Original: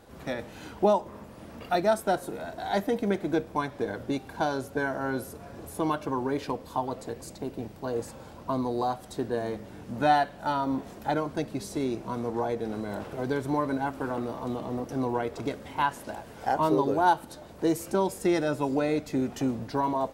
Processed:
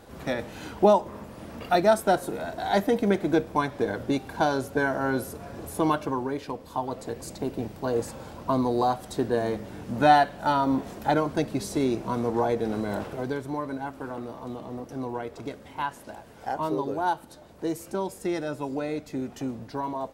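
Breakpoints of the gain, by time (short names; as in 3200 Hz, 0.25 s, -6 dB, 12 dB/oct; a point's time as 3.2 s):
5.95 s +4 dB
6.43 s -3 dB
7.37 s +4.5 dB
12.98 s +4.5 dB
13.47 s -4 dB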